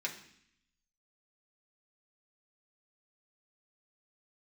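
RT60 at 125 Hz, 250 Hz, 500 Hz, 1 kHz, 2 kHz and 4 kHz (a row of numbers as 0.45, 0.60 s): 1.0, 0.95, 0.65, 0.65, 0.80, 0.80 s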